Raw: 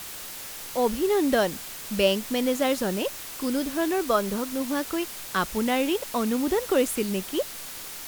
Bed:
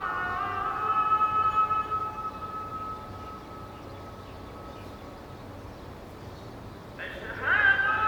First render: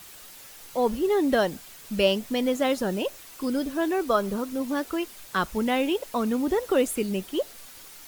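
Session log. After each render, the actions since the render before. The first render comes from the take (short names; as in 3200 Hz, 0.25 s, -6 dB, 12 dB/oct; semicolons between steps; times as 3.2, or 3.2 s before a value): denoiser 9 dB, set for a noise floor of -38 dBFS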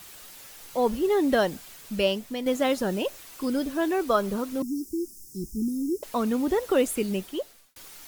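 1.73–2.46 fade out, to -7 dB; 4.62–6.03 Chebyshev band-stop 370–5300 Hz, order 5; 7.15–7.76 fade out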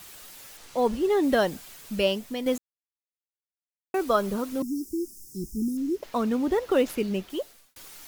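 0.57–1.23 median filter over 3 samples; 2.58–3.94 mute; 5.77–7.3 median filter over 5 samples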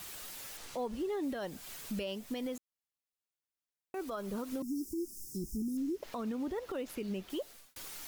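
compressor 6:1, threshold -33 dBFS, peak gain reduction 15 dB; limiter -29.5 dBFS, peak gain reduction 9.5 dB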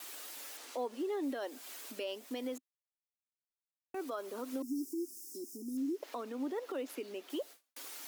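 elliptic high-pass 260 Hz, stop band 40 dB; gate with hold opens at -44 dBFS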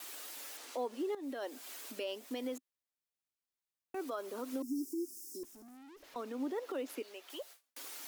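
1.15–1.56 fade in equal-power, from -15 dB; 5.43–6.16 tube stage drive 54 dB, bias 0.35; 7.02–7.63 HPF 650 Hz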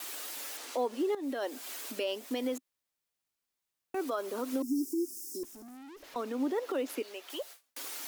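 gain +6 dB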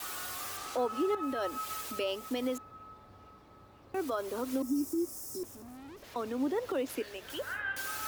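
add bed -15 dB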